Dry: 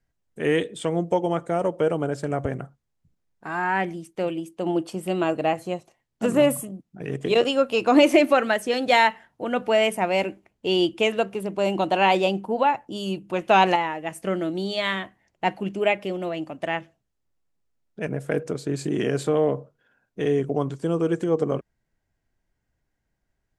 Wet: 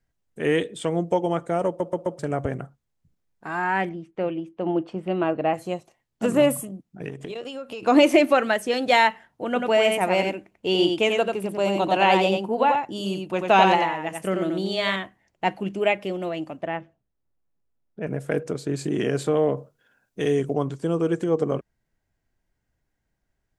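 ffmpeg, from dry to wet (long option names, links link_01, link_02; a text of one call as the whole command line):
ffmpeg -i in.wav -filter_complex "[0:a]asettb=1/sr,asplit=3[link_01][link_02][link_03];[link_01]atrim=end=3.894[link_04];[link_02]atrim=start=3.89:end=5.54,asetpts=PTS-STARTPTS,afade=type=in:duration=0.004:curve=qsin,afade=type=out:start_time=1.646:duration=0.004:curve=qsin,lowpass=2400[link_05];[link_03]atrim=start=5.536[link_06];[link_04][link_05]acrossfade=duration=0.004:curve1=hsin:curve2=qsin[link_07];[link_07][link_06]acrossfade=duration=0.004:curve1=qsin:curve2=hsin,asettb=1/sr,asplit=3[link_08][link_09][link_10];[link_08]atrim=end=7.084[link_11];[link_09]atrim=start=7.08:end=7.83,asetpts=PTS-STARTPTS,afade=type=in:duration=0.004:curve=qsin,afade=type=out:start_time=0.746:duration=0.004:curve=qsin,acompressor=threshold=-31dB:ratio=8:attack=3.2:release=140:knee=1:detection=peak[link_12];[link_10]atrim=start=7.826[link_13];[link_11][link_12]acrossfade=duration=0.004:curve1=hsin:curve2=qsin[link_14];[link_14][link_13]acrossfade=duration=0.004:curve1=qsin:curve2=hsin,asettb=1/sr,asplit=3[link_15][link_16][link_17];[link_15]atrim=end=9.464[link_18];[link_16]atrim=start=9.46:end=14.96,asetpts=PTS-STARTPTS,afade=type=in:duration=0.004:curve=qsin,afade=type=out:start_time=5.496:duration=0.004:curve=qsin,aecho=1:1:90:0.596,atrim=end_sample=242550[link_19];[link_17]atrim=start=14.956[link_20];[link_18][link_19]acrossfade=duration=0.004:curve1=hsin:curve2=qsin[link_21];[link_21][link_20]acrossfade=duration=0.004:curve1=qsin:curve2=hsin,asettb=1/sr,asplit=3[link_22][link_23][link_24];[link_22]atrim=end=16.614[link_25];[link_23]atrim=start=16.61:end=18.07,asetpts=PTS-STARTPTS,afade=type=in:duration=0.004:curve=qsin,afade=type=out:start_time=1.456:duration=0.004:curve=qsin,lowpass=frequency=1200:poles=1[link_26];[link_24]atrim=start=18.066[link_27];[link_25][link_26]acrossfade=duration=0.004:curve1=hsin:curve2=qsin[link_28];[link_28][link_27]acrossfade=duration=0.004:curve1=qsin:curve2=hsin,asettb=1/sr,asplit=3[link_29][link_30][link_31];[link_29]atrim=end=19.574[link_32];[link_30]atrim=start=19.57:end=20.54,asetpts=PTS-STARTPTS,afade=type=in:duration=0.004:curve=qsin,afade=type=out:start_time=0.966:duration=0.004:curve=qsin,highshelf=frequency=4100:gain=10[link_33];[link_31]atrim=start=20.536[link_34];[link_32][link_33]acrossfade=duration=0.004:curve1=hsin:curve2=qsin[link_35];[link_35][link_34]acrossfade=duration=0.004:curve1=qsin:curve2=hsin,asplit=5[link_36][link_37][link_38][link_39][link_40];[link_36]atrim=end=1.802[link_41];[link_37]atrim=start=1.668:end=1.802[link_42];[link_38]atrim=start=1.668:end=1.802[link_43];[link_39]atrim=start=1.668:end=1.802[link_44];[link_40]atrim=start=2.188[link_45];[link_41][link_42]acrossfade=duration=0.004:curve1=hsin:curve2=hsin[link_46];[link_46][link_43]acrossfade=duration=0.004:curve1=hsin:curve2=hsin[link_47];[link_47][link_44]acrossfade=duration=0.004:curve1=hsin:curve2=hsin[link_48];[link_48][link_45]acrossfade=duration=0.004:curve1=hsin:curve2=hsin" out.wav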